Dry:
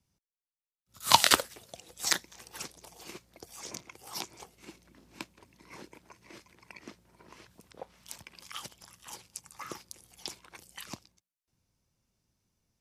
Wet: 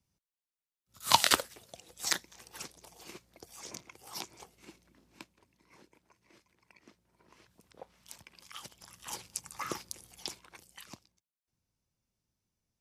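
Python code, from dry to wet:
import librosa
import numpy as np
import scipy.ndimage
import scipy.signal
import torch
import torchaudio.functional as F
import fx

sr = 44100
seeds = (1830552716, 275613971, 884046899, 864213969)

y = fx.gain(x, sr, db=fx.line((4.57, -3.0), (5.72, -12.0), (6.84, -12.0), (7.79, -5.0), (8.59, -5.0), (9.13, 4.5), (9.89, 4.5), (10.9, -7.0)))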